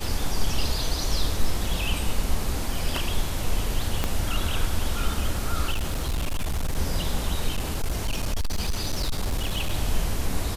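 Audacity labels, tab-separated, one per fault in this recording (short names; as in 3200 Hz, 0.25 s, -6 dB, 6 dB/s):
4.040000	4.040000	pop -9 dBFS
5.720000	6.780000	clipped -22 dBFS
7.550000	9.740000	clipped -21 dBFS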